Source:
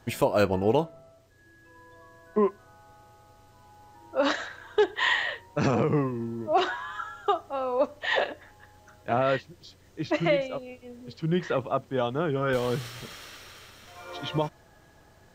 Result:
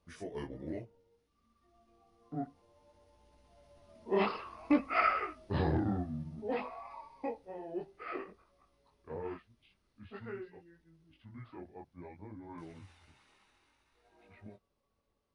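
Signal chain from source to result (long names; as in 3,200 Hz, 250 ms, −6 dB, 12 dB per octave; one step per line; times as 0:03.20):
pitch shift by two crossfaded delay taps −6.5 semitones
source passing by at 0:04.85, 6 m/s, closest 5.7 metres
multi-voice chorus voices 2, 0.6 Hz, delay 22 ms, depth 3.8 ms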